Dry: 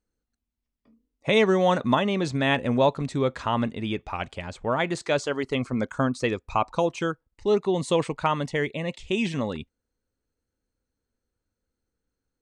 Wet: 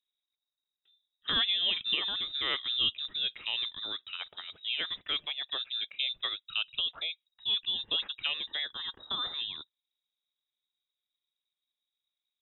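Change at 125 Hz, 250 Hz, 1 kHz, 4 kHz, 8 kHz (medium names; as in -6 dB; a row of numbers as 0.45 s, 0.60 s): under -25 dB, -27.0 dB, -18.0 dB, +8.0 dB, under -35 dB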